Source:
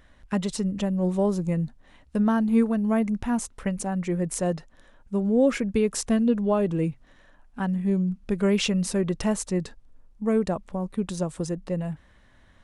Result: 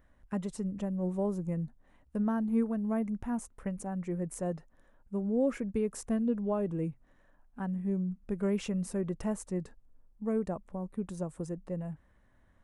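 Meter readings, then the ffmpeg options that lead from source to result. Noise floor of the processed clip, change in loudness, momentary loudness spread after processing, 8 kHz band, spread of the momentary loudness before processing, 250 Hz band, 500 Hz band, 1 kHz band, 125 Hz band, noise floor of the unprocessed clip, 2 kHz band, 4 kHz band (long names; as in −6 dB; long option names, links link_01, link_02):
−66 dBFS, −8.5 dB, 9 LU, −13.0 dB, 9 LU, −8.0 dB, −8.5 dB, −9.5 dB, −8.0 dB, −57 dBFS, −13.0 dB, below −15 dB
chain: -af "equalizer=frequency=4000:width_type=o:width=1.7:gain=-12,volume=-8dB"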